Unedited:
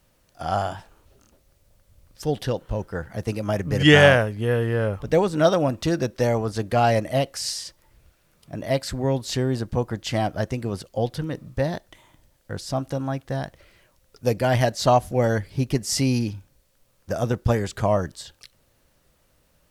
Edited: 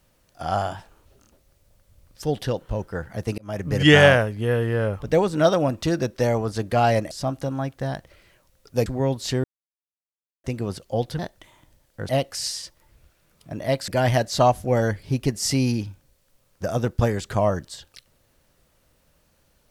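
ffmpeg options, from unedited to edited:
-filter_complex "[0:a]asplit=9[a][b][c][d][e][f][g][h][i];[a]atrim=end=3.38,asetpts=PTS-STARTPTS,afade=t=out:st=3.376:d=0.004:c=hsin[j];[b]atrim=start=3.38:end=7.112,asetpts=PTS-STARTPTS,afade=t=in:d=0.3[k];[c]atrim=start=12.598:end=14.352[l];[d]atrim=start=8.898:end=9.48,asetpts=PTS-STARTPTS,afade=t=out:st=0.578:d=0.004:c=hsin[m];[e]atrim=start=9.48:end=10.48,asetpts=PTS-STARTPTS,volume=0[n];[f]atrim=start=10.48:end=11.232,asetpts=PTS-STARTPTS,afade=t=in:d=0.004:c=hsin[o];[g]atrim=start=11.698:end=12.602[p];[h]atrim=start=7.108:end=8.902[q];[i]atrim=start=14.348[r];[j][k]concat=n=2:v=0:a=1[s];[s][l]acrossfade=d=0.004:c1=hsin:c2=hsin[t];[m][n][o]concat=n=3:v=0:a=1[u];[t][u]acrossfade=d=0.004:c1=hsin:c2=hsin[v];[v][p]acrossfade=d=0.004:c1=hsin:c2=hsin[w];[w][q]acrossfade=d=0.004:c1=hsin:c2=hsin[x];[x][r]acrossfade=d=0.004:c1=hsin:c2=hsin"

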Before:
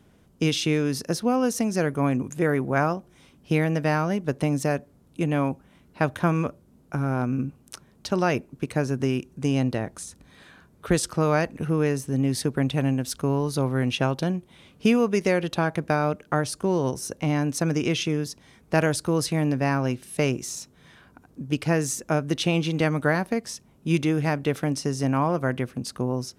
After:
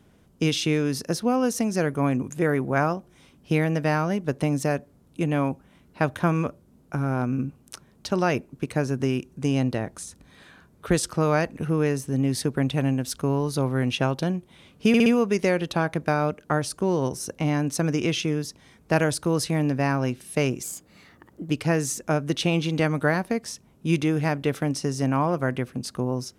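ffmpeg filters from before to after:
-filter_complex "[0:a]asplit=6[a][b][c][d][e][f];[a]atrim=end=14.942[g];[b]atrim=start=14.878:end=14.942[h];[c]atrim=start=14.878:end=14.942[i];[d]atrim=start=14.878:end=20.454[j];[e]atrim=start=20.45:end=21.51,asetpts=PTS-STARTPTS,asetrate=53802,aresample=44100,atrim=end_sample=38316,asetpts=PTS-STARTPTS[k];[f]atrim=start=21.506[l];[g][h]acrossfade=d=0.004:c1=hsin:c2=hsin[m];[m][i]acrossfade=d=0.004:c1=hsin:c2=hsin[n];[n][j]acrossfade=d=0.004:c1=hsin:c2=hsin[o];[o][k]acrossfade=d=0.004:c1=hsin:c2=hsin[p];[p][l]acrossfade=d=0.004:c1=hsin:c2=hsin"

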